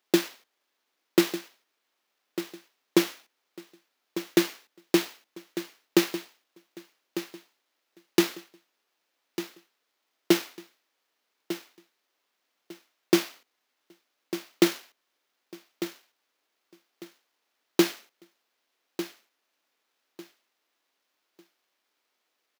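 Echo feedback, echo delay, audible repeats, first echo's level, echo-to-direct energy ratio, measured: 24%, 1,199 ms, 2, −12.0 dB, −11.5 dB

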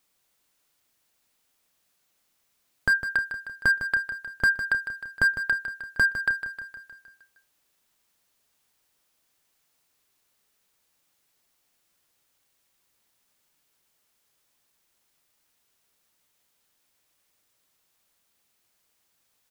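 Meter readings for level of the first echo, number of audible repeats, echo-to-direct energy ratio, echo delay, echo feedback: −10.0 dB, 6, −8.0 dB, 155 ms, 58%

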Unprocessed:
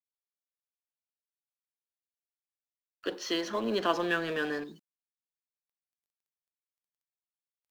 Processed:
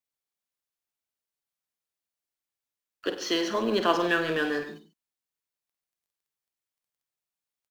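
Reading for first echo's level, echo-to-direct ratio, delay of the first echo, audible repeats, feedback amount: −10.0 dB, −7.5 dB, 50 ms, 3, repeats not evenly spaced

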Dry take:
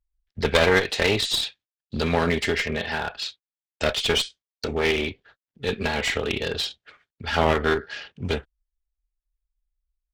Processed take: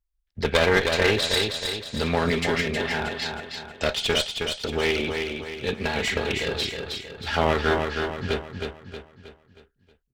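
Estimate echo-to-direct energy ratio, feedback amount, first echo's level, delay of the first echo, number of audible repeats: −4.0 dB, 45%, −5.0 dB, 316 ms, 5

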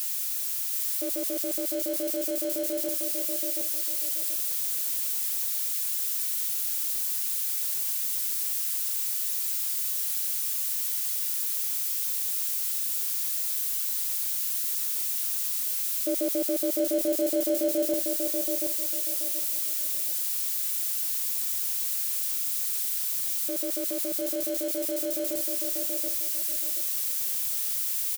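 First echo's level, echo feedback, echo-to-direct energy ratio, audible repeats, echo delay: −4.5 dB, 28%, −4.0 dB, 3, 729 ms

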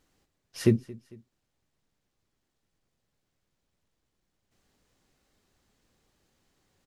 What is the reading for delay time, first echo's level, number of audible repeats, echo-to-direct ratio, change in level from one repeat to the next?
225 ms, −22.0 dB, 2, −21.0 dB, −6.5 dB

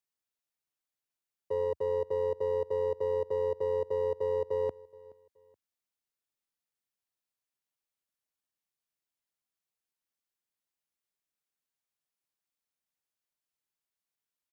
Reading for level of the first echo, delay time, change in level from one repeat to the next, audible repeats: −22.5 dB, 424 ms, −10.0 dB, 2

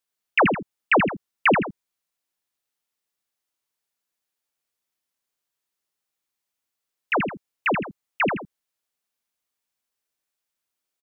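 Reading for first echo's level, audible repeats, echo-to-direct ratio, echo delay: −5.5 dB, 2, −5.0 dB, 81 ms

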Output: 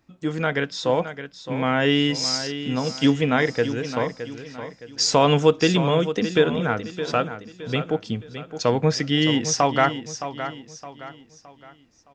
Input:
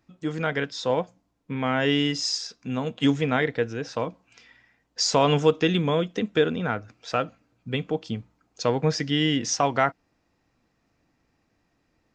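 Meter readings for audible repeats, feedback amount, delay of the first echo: 3, 38%, 616 ms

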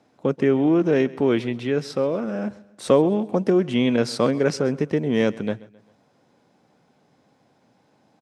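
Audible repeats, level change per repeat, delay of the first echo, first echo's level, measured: 3, −7.0 dB, 132 ms, −20.5 dB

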